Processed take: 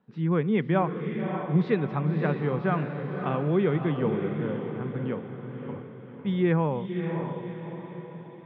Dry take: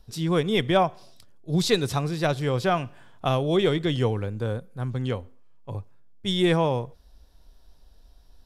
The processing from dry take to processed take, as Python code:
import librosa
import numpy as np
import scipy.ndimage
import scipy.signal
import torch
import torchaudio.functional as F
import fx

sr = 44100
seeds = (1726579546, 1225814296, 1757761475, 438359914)

y = fx.cabinet(x, sr, low_hz=150.0, low_slope=24, high_hz=2200.0, hz=(150.0, 210.0, 660.0), db=(6, 6, -7))
y = fx.echo_diffused(y, sr, ms=581, feedback_pct=48, wet_db=-6)
y = y * 10.0 ** (-3.0 / 20.0)